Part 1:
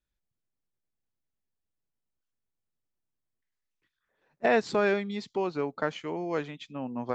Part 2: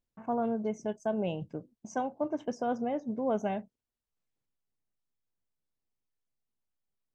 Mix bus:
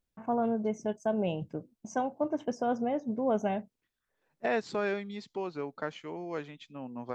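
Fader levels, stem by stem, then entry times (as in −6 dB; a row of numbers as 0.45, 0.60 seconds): −6.0, +1.5 decibels; 0.00, 0.00 seconds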